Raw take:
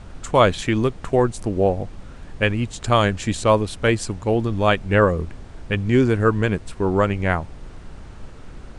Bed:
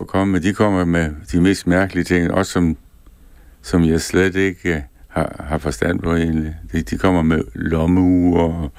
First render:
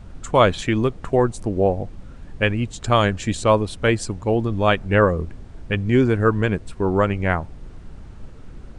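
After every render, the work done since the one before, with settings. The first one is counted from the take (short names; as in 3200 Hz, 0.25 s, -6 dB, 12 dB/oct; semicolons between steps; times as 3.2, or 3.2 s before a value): denoiser 6 dB, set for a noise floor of -40 dBFS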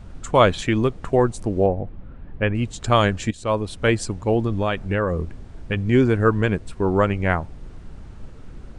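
1.66–2.55 air absorption 430 m; 3.31–4.03 fade in equal-power, from -16.5 dB; 4.59–5.8 compressor, threshold -17 dBFS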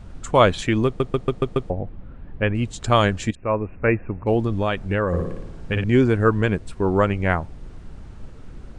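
0.86 stutter in place 0.14 s, 6 plays; 3.35–4.27 Chebyshev low-pass 2700 Hz, order 10; 5.07–5.84 flutter echo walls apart 9.8 m, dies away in 0.85 s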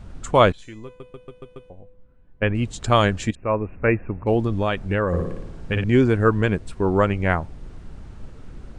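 0.52–2.42 resonator 500 Hz, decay 0.66 s, mix 90%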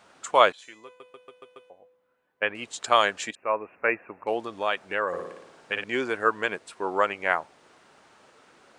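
HPF 660 Hz 12 dB/oct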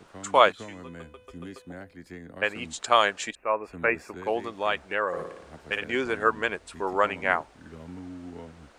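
add bed -27 dB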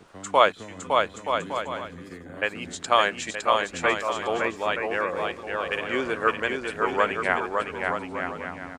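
bouncing-ball echo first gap 0.56 s, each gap 0.65×, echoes 5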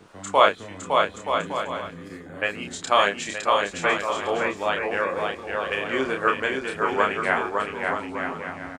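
doubler 30 ms -4 dB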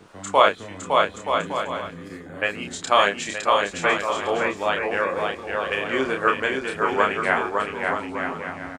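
gain +1.5 dB; limiter -3 dBFS, peak gain reduction 2.5 dB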